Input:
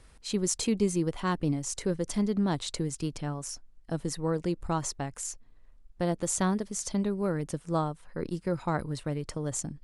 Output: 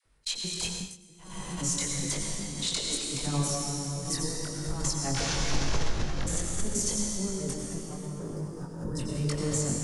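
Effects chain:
0:05.13–0:06.21: linear delta modulator 32 kbit/s, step −28.5 dBFS
compressor whose output falls as the input rises −34 dBFS, ratio −0.5
all-pass dispersion lows, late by 55 ms, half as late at 640 Hz
0:07.56–0:08.85: gain into a clipping stage and back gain 34 dB
noise gate −37 dBFS, range −58 dB
0:02.32–0:03.09: Butterworth high-pass 210 Hz 36 dB per octave
0:08.11–0:08.99: gain on a spectral selection 1,900–4,800 Hz −18 dB
convolution reverb RT60 3.3 s, pre-delay 83 ms, DRR −1.5 dB
0:00.71–0:01.49: duck −20.5 dB, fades 0.25 s
chorus effect 0.84 Hz, delay 19.5 ms, depth 4.3 ms
background raised ahead of every attack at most 88 dB per second
level +4.5 dB

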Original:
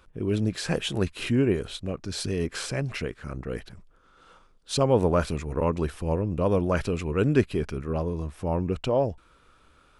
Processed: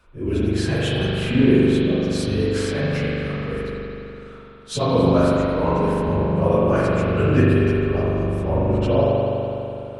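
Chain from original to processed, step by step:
random phases in long frames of 50 ms
spring reverb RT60 3.1 s, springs 41 ms, chirp 45 ms, DRR −6 dB

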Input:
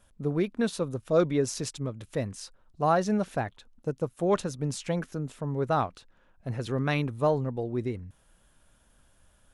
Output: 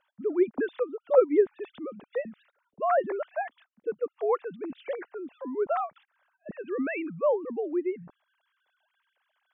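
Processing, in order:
three sine waves on the formant tracks
treble cut that deepens with the level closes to 1,800 Hz, closed at −23 dBFS

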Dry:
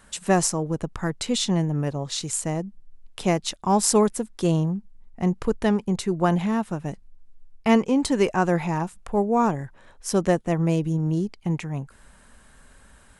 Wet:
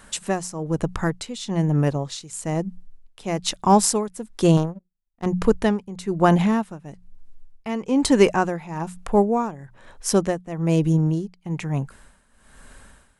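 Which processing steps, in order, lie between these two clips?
mains-hum notches 60/120/180 Hz
0:04.57–0:05.26: power curve on the samples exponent 2
amplitude tremolo 1.1 Hz, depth 84%
level +6 dB

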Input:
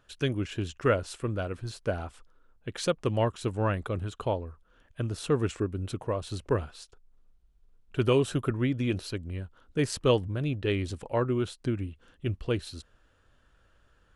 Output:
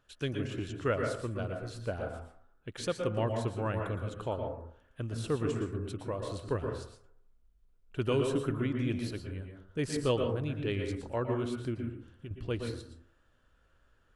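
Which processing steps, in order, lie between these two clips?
0:11.74–0:12.31: downward compressor, threshold −36 dBFS, peak gain reduction 10.5 dB
dense smooth reverb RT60 0.59 s, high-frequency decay 0.3×, pre-delay 105 ms, DRR 3 dB
level −6 dB

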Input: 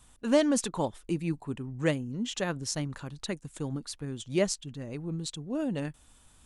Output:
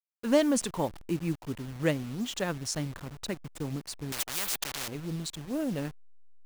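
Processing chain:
hold until the input has moved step −40.5 dBFS
0:04.12–0:04.88: every bin compressed towards the loudest bin 10 to 1

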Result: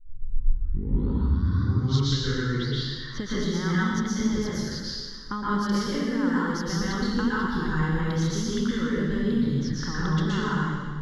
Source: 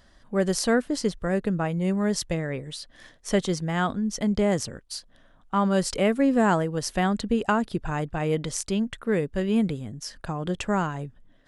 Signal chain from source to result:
turntable start at the beginning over 2.98 s
low-pass that shuts in the quiet parts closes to 1,700 Hz, open at −22.5 dBFS
high-shelf EQ 7,600 Hz +12 dB
downward compressor 6 to 1, threshold −33 dBFS, peak gain reduction 15.5 dB
high-frequency loss of the air 79 metres
phaser with its sweep stopped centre 2,400 Hz, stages 6
convolution reverb RT60 1.6 s, pre-delay 116 ms, DRR −8 dB
wrong playback speed 24 fps film run at 25 fps
level +5 dB

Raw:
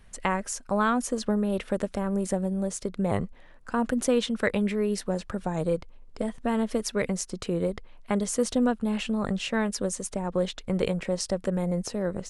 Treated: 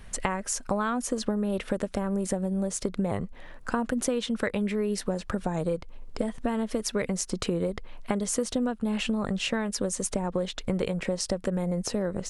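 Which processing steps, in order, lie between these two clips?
downward compressor 6 to 1, threshold −33 dBFS, peak gain reduction 13.5 dB
level +8 dB

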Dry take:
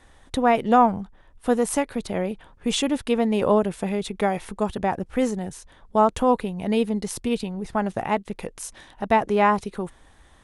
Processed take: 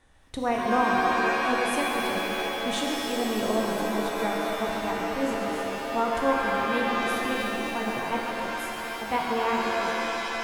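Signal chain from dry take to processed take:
pitch glide at a constant tempo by +2 semitones starting unshifted
delay with a band-pass on its return 136 ms, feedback 82%, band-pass 1,300 Hz, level −6 dB
reverb with rising layers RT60 3.4 s, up +7 semitones, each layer −2 dB, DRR 0 dB
level −8.5 dB

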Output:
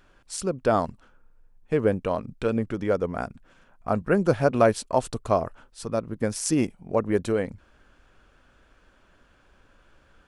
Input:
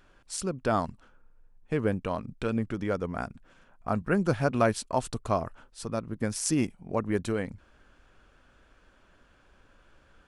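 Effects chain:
dynamic equaliser 510 Hz, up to +6 dB, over −39 dBFS, Q 1.2
level +1.5 dB

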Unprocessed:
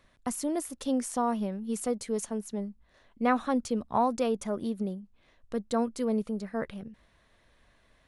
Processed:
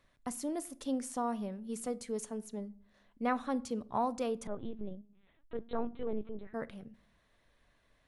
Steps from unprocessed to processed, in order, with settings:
rectangular room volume 780 cubic metres, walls furnished, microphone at 0.34 metres
0:04.47–0:06.54: linear-prediction vocoder at 8 kHz pitch kept
level −6.5 dB

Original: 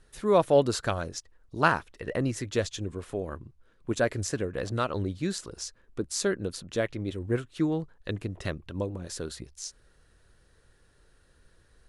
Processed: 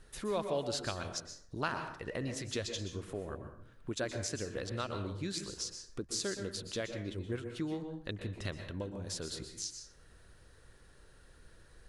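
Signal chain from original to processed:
dynamic equaliser 4,200 Hz, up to +8 dB, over −49 dBFS, Q 0.72
downward compressor 2 to 1, threshold −47 dBFS, peak gain reduction 17.5 dB
dense smooth reverb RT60 0.6 s, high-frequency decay 0.6×, pre-delay 110 ms, DRR 6 dB
level +2 dB

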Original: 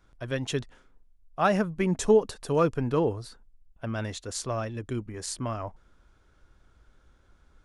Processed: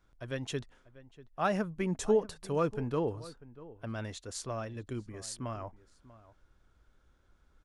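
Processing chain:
slap from a distant wall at 110 metres, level −18 dB
level −6.5 dB

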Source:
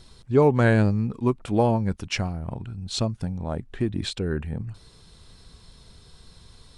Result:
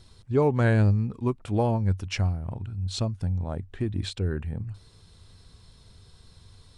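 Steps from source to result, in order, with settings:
parametric band 94 Hz +12 dB 0.35 octaves
level −4.5 dB

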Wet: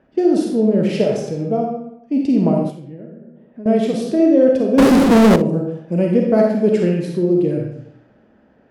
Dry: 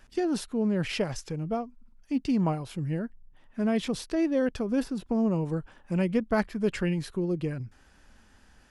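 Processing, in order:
high-pass filter 160 Hz 12 dB per octave
low shelf with overshoot 780 Hz +9 dB, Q 1.5
comb and all-pass reverb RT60 0.82 s, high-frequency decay 0.8×, pre-delay 5 ms, DRR −0.5 dB
0:02.70–0:03.66: downward compressor 3 to 1, threshold −37 dBFS, peak gain reduction 15.5 dB
0:04.78–0:05.36: power curve on the samples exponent 0.35
low-pass that shuts in the quiet parts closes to 1,700 Hz, open at −18.5 dBFS
on a send: flutter between parallel walls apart 10.2 metres, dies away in 0.23 s

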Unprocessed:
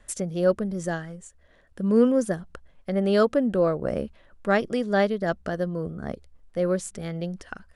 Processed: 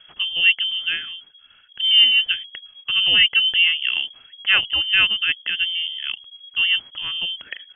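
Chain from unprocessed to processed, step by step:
voice inversion scrambler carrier 3,300 Hz
level +4.5 dB

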